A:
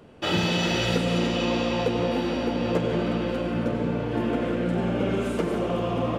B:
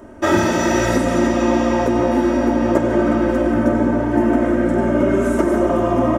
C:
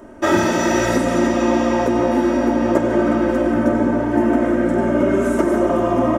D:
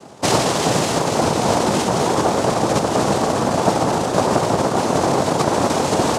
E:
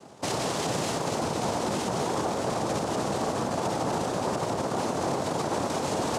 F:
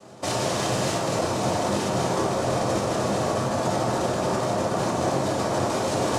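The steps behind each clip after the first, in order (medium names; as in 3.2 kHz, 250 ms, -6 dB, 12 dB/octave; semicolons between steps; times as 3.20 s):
high-order bell 3.4 kHz -13 dB 1.2 oct; comb 3.2 ms, depth 95%; gain riding; trim +7 dB
peaking EQ 72 Hz -6 dB 1.3 oct
noise-vocoded speech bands 2; trim -1 dB
peak limiter -11 dBFS, peak gain reduction 9 dB; trim -8 dB
reverberation RT60 0.55 s, pre-delay 3 ms, DRR -1 dB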